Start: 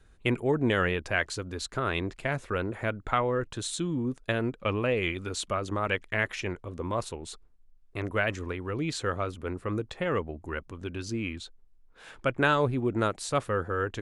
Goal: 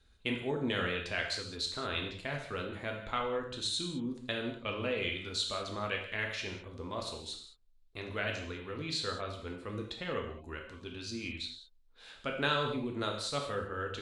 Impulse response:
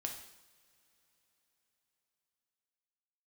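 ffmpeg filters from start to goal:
-filter_complex "[0:a]equalizer=frequency=4000:width_type=o:width=0.82:gain=13.5[link_01];[1:a]atrim=start_sample=2205,afade=type=out:start_time=0.22:duration=0.01,atrim=end_sample=10143,asetrate=35280,aresample=44100[link_02];[link_01][link_02]afir=irnorm=-1:irlink=0,volume=-8.5dB"

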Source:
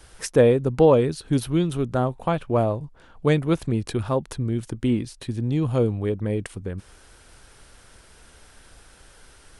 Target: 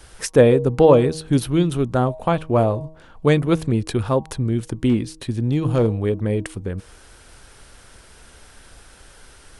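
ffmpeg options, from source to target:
ffmpeg -i in.wav -filter_complex "[0:a]bandreject=frequency=158.2:width_type=h:width=4,bandreject=frequency=316.4:width_type=h:width=4,bandreject=frequency=474.6:width_type=h:width=4,bandreject=frequency=632.8:width_type=h:width=4,bandreject=frequency=791:width_type=h:width=4,bandreject=frequency=949.2:width_type=h:width=4,bandreject=frequency=1107.4:width_type=h:width=4,asettb=1/sr,asplit=3[link_01][link_02][link_03];[link_01]atrim=end=4.894[link_04];[link_02]atrim=start=4.89:end=5.92,asetpts=PTS-STARTPTS,afade=type=in:duration=0.004:curve=qsin,afade=type=out:start_time=1.026:duration=0.004:curve=qsin,asoftclip=type=hard:threshold=-15dB[link_05];[link_03]atrim=start=5.916[link_06];[link_04][link_05]acrossfade=duration=0.004:curve1=hsin:curve2=qsin[link_07];[link_07][link_06]acrossfade=duration=0.004:curve1=qsin:curve2=hsin,volume=4dB" out.wav

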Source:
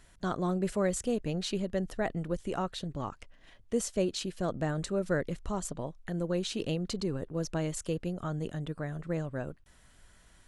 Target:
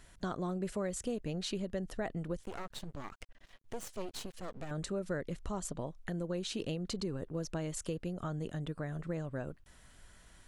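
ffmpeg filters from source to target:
ffmpeg -i in.wav -filter_complex "[0:a]acompressor=threshold=-37dB:ratio=2.5,asettb=1/sr,asplit=3[link_01][link_02][link_03];[link_01]atrim=end=2.434[link_04];[link_02]atrim=start=2.43:end=4.71,asetpts=PTS-STARTPTS,afade=type=in:duration=0.004:curve=qsin,afade=type=out:start_time=2.276:duration=0.004:curve=qsin,aeval=exprs='max(val(0),0)':channel_layout=same[link_05];[link_03]atrim=start=4.706[link_06];[link_04][link_05]acrossfade=duration=0.004:curve1=hsin:curve2=qsin[link_07];[link_07][link_06]acrossfade=duration=0.004:curve1=qsin:curve2=hsin,volume=1dB" out.wav

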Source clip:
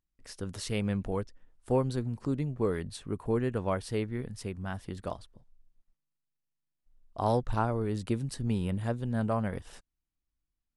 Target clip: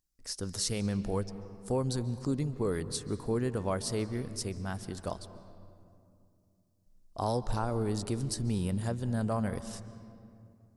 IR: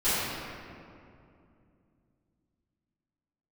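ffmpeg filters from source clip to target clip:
-filter_complex "[0:a]highshelf=frequency=3900:width_type=q:width=1.5:gain=8,alimiter=limit=-21dB:level=0:latency=1:release=58,asplit=2[link_01][link_02];[1:a]atrim=start_sample=2205,lowpass=6800,adelay=130[link_03];[link_02][link_03]afir=irnorm=-1:irlink=0,volume=-28dB[link_04];[link_01][link_04]amix=inputs=2:normalize=0"

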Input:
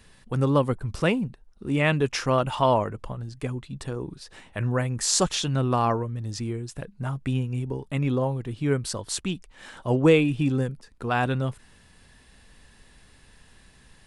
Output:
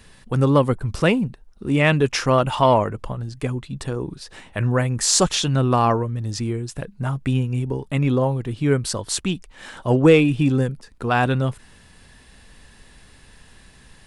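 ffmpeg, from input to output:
ffmpeg -i in.wav -af "acontrast=37" out.wav

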